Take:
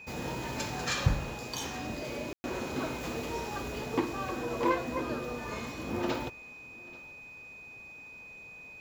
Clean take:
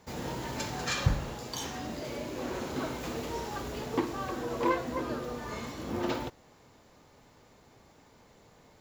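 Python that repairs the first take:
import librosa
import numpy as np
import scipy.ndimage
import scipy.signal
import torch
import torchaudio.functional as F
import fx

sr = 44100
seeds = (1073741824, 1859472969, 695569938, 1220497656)

y = fx.notch(x, sr, hz=2500.0, q=30.0)
y = fx.fix_ambience(y, sr, seeds[0], print_start_s=7.93, print_end_s=8.43, start_s=2.33, end_s=2.44)
y = fx.fix_echo_inverse(y, sr, delay_ms=836, level_db=-23.0)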